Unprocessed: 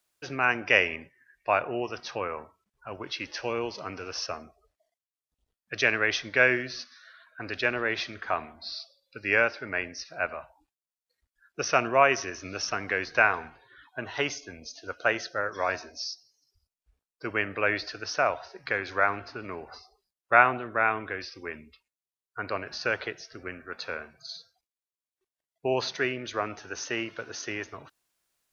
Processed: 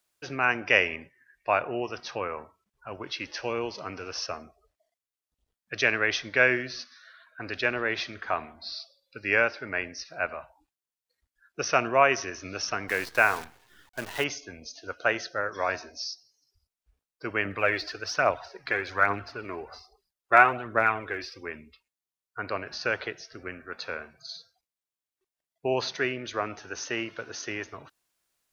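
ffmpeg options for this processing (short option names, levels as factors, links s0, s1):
-filter_complex "[0:a]asettb=1/sr,asplit=3[s0][s1][s2];[s0]atrim=end=12.884[s3];[s1]atrim=start=12.88:end=14.24,asetpts=PTS-STARTPTS,afade=t=in:d=0.004:c=qsin,afade=t=out:st=1.356:d=0.004:c=qsin,acrusher=bits=7:dc=4:mix=0:aa=0.000001[s4];[s2]atrim=start=14.236[s5];[s3][s4]acrossfade=d=0.004:c1=hsin:c2=qsin[s6];[s6][s5]acrossfade=d=0.004:c1=qsin:c2=hsin,asettb=1/sr,asplit=3[s7][s8][s9];[s7]atrim=end=17.454[s10];[s8]atrim=start=17.45:end=21.41,asetpts=PTS-STARTPTS,afade=t=in:d=0.004:c=qsin,afade=t=out:st=3.956:d=0.004:c=qsin,aphaser=in_gain=1:out_gain=1:delay=3.1:decay=0.45:speed=1.2:type=triangular[s11];[s9]atrim=start=21.406[s12];[s10][s11]acrossfade=d=0.004:c1=hsin:c2=qsin[s13];[s13][s12]acrossfade=d=0.004:c1=qsin:c2=hsin"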